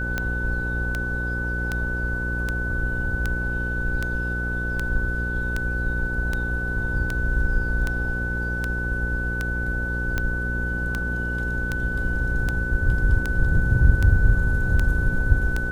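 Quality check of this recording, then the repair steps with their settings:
buzz 60 Hz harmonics 9 -28 dBFS
tick 78 rpm -11 dBFS
whine 1.5 kHz -27 dBFS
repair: de-click; de-hum 60 Hz, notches 9; band-stop 1.5 kHz, Q 30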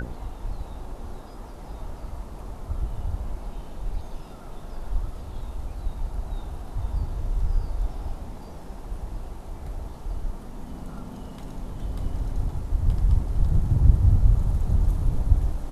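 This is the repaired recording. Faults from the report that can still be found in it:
nothing left

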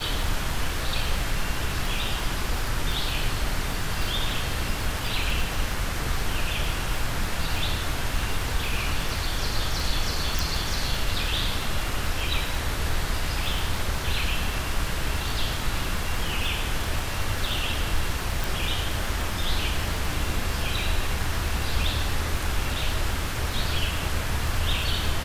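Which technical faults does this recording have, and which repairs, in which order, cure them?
crackle 45 per s -28 dBFS
10.39 s: pop
18.44 s: pop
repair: de-click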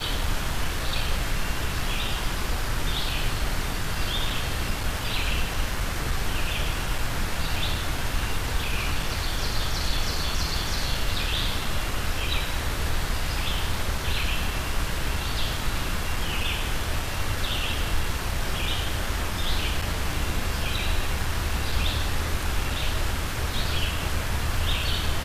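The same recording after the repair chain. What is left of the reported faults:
nothing left

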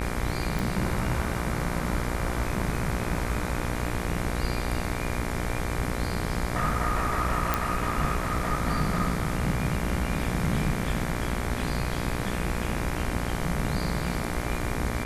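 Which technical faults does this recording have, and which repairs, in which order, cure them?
buzz 60 Hz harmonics 40 -32 dBFS
0.59 s: pop
7.54 s: pop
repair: de-click; de-hum 60 Hz, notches 40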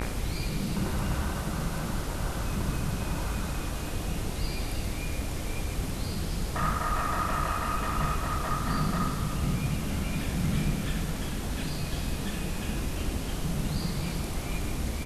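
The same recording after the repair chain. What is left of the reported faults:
nothing left

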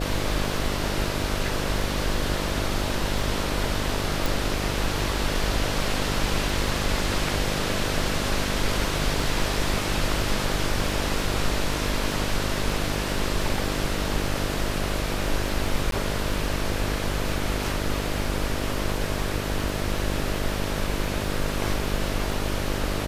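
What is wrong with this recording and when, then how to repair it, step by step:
buzz 50 Hz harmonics 13 -30 dBFS
crackle 38 per s -34 dBFS
4.26 s: pop
15.91–15.92 s: dropout 12 ms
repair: de-click; de-hum 50 Hz, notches 13; interpolate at 15.91 s, 12 ms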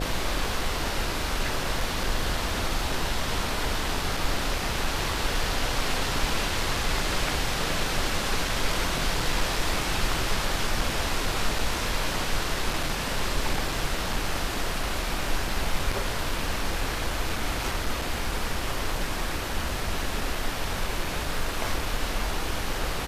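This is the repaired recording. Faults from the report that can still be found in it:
4.26 s: pop

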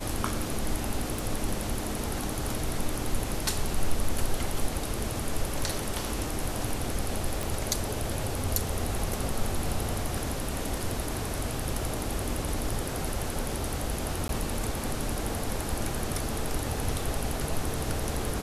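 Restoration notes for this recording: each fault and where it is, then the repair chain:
1.19 s: pop
7.43 s: pop
14.28–14.29 s: dropout 12 ms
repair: de-click; interpolate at 14.28 s, 12 ms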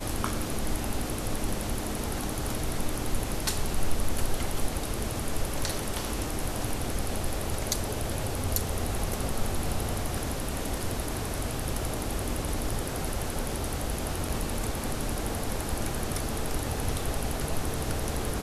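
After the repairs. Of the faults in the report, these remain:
nothing left

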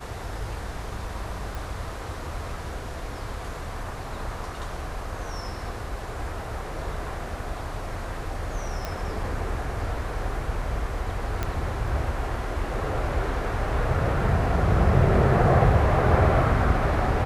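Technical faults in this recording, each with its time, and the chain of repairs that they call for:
1.55 s: pop
8.85 s: pop -15 dBFS
11.43 s: pop -13 dBFS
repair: de-click

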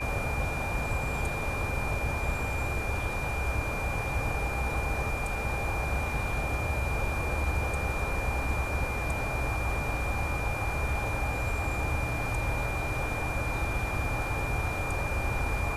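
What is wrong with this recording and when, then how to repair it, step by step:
whine 2.4 kHz -35 dBFS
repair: band-stop 2.4 kHz, Q 30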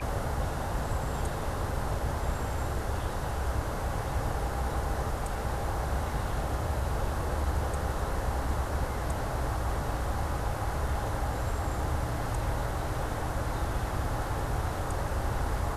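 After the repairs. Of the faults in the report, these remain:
nothing left

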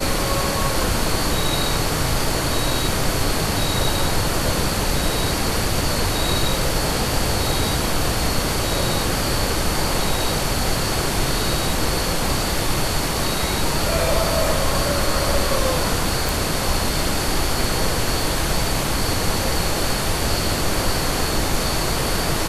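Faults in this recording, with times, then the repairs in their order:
16.29 s: pop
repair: de-click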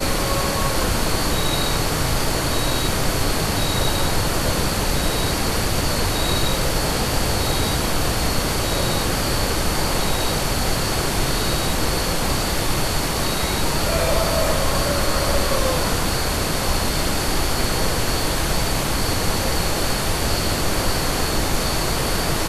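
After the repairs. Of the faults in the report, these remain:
nothing left

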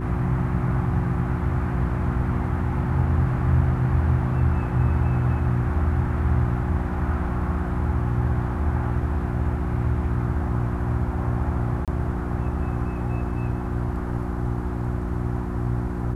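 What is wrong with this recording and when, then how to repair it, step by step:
hum 60 Hz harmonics 6 -28 dBFS
11.85–11.88 s: dropout 27 ms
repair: de-hum 60 Hz, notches 6; interpolate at 11.85 s, 27 ms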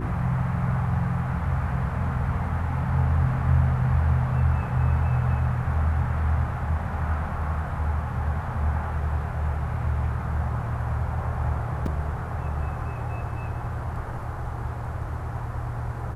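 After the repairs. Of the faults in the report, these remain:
nothing left

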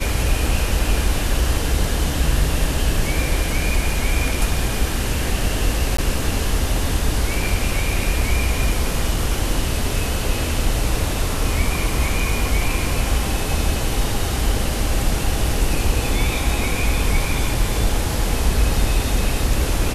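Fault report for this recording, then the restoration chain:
5.97–5.98 s: dropout 14 ms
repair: interpolate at 5.97 s, 14 ms

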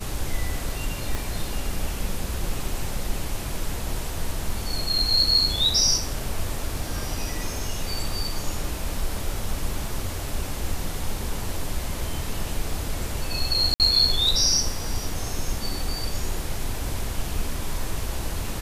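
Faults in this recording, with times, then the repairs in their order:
1.15 s: pop
13.74–13.80 s: dropout 58 ms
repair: de-click; interpolate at 13.74 s, 58 ms

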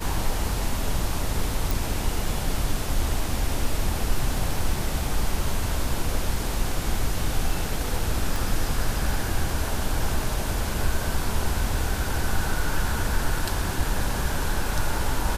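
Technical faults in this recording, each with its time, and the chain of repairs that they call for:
1.71 s: pop
8.36 s: pop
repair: de-click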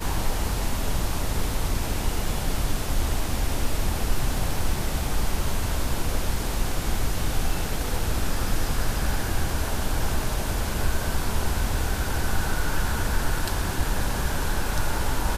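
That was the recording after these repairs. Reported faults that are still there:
nothing left

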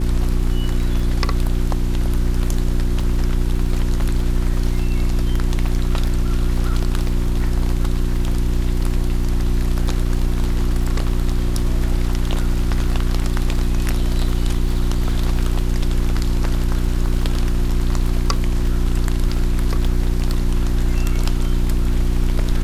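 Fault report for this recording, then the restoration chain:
crackle 20 per s -26 dBFS
hum 60 Hz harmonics 6 -22 dBFS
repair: de-click; de-hum 60 Hz, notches 6

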